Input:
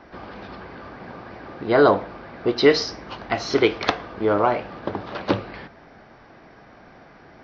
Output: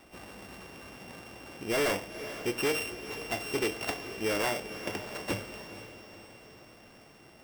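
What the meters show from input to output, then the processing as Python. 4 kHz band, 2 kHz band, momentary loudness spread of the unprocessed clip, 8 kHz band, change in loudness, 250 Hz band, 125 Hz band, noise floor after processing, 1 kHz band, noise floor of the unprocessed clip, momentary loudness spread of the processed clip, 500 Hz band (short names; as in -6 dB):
-8.0 dB, -6.5 dB, 21 LU, n/a, -11.0 dB, -12.0 dB, -10.0 dB, -55 dBFS, -13.5 dB, -49 dBFS, 18 LU, -12.5 dB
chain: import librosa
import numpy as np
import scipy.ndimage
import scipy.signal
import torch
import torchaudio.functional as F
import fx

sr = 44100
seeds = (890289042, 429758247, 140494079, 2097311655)

y = np.r_[np.sort(x[:len(x) // 16 * 16].reshape(-1, 16), axis=1).ravel(), x[len(x) // 16 * 16:]]
y = np.clip(10.0 ** (16.0 / 20.0) * y, -1.0, 1.0) / 10.0 ** (16.0 / 20.0)
y = fx.echo_diffused(y, sr, ms=482, feedback_pct=52, wet_db=-12)
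y = F.gain(torch.from_numpy(y), -9.0).numpy()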